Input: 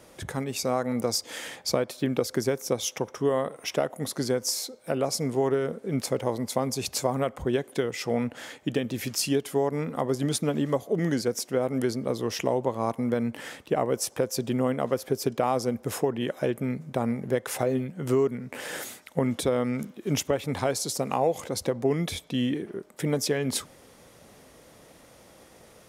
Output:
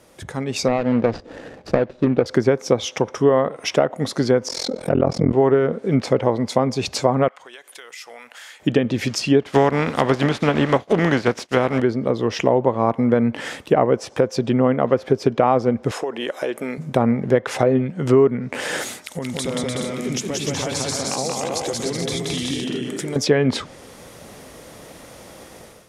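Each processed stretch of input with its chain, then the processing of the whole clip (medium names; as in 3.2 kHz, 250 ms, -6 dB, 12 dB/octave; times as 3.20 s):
0.68–2.26 s: median filter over 41 samples + distance through air 54 m + loudspeaker Doppler distortion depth 0.12 ms
4.48–5.33 s: tilt EQ -2 dB/octave + AM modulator 42 Hz, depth 95% + level flattener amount 50%
7.28–8.60 s: high-pass 1.2 kHz + compression 3:1, threshold -50 dBFS
9.41–11.80 s: spectral contrast reduction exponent 0.57 + expander -36 dBFS
15.91–16.78 s: high-pass 420 Hz + compression 2.5:1, threshold -32 dBFS
19.04–23.16 s: peaking EQ 7.1 kHz +11 dB 2.3 oct + compression 3:1, threshold -40 dBFS + bouncing-ball echo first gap 180 ms, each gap 0.65×, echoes 5, each echo -2 dB
whole clip: low-pass that closes with the level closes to 2.3 kHz, closed at -22.5 dBFS; level rider gain up to 11.5 dB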